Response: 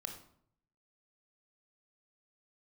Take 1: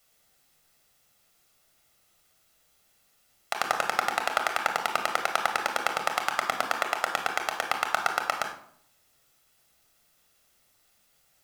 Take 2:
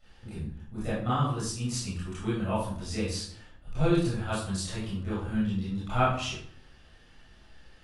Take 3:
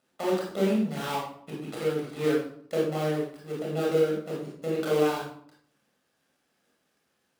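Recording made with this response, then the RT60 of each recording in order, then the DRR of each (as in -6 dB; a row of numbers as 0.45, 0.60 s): 1; 0.65, 0.65, 0.65 s; 4.0, -11.5, -4.5 dB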